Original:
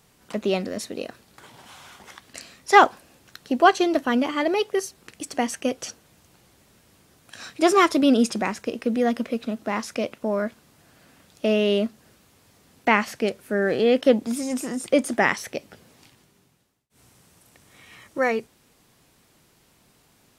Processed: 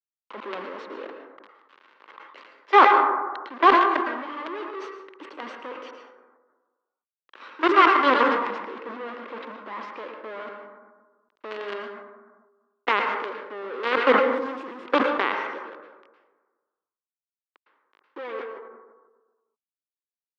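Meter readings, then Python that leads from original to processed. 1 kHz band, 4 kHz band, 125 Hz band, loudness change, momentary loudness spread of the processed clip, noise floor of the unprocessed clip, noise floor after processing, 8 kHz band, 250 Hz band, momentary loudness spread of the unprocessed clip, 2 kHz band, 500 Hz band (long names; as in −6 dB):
+3.0 dB, −3.0 dB, below −15 dB, +1.0 dB, 22 LU, −61 dBFS, below −85 dBFS, below −20 dB, −8.0 dB, 17 LU, +0.5 dB, −4.0 dB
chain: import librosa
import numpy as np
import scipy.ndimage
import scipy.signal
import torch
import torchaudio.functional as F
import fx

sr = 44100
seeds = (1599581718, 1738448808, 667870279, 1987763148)

y = fx.peak_eq(x, sr, hz=1700.0, db=-12.0, octaves=0.23)
y = fx.quant_companded(y, sr, bits=2)
y = fx.cabinet(y, sr, low_hz=330.0, low_slope=24, high_hz=2800.0, hz=(690.0, 1100.0, 2500.0), db=(-9, 6, -4))
y = fx.rev_plate(y, sr, seeds[0], rt60_s=0.88, hf_ratio=0.4, predelay_ms=100, drr_db=4.5)
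y = fx.sustainer(y, sr, db_per_s=44.0)
y = y * 10.0 ** (-7.5 / 20.0)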